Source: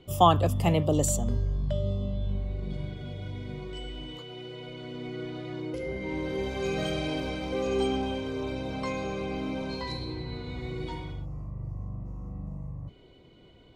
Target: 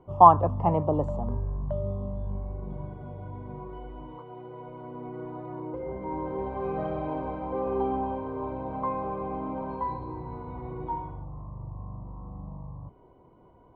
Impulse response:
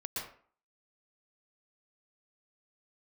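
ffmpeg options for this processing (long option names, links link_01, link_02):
-filter_complex "[0:a]lowpass=frequency=970:width_type=q:width=4.9,asplit=2[link_01][link_02];[1:a]atrim=start_sample=2205,atrim=end_sample=4410,lowpass=3900[link_03];[link_02][link_03]afir=irnorm=-1:irlink=0,volume=-6.5dB[link_04];[link_01][link_04]amix=inputs=2:normalize=0,volume=-5dB"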